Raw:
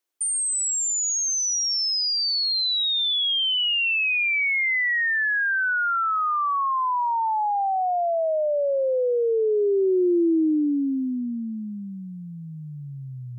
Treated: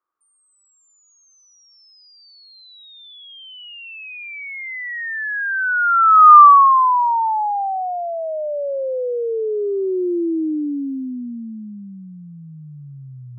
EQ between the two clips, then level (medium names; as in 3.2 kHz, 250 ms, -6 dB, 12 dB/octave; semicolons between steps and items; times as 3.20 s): resonant low-pass 1.2 kHz, resonance Q 10; peaking EQ 680 Hz -4 dB 0.44 oct; -1.0 dB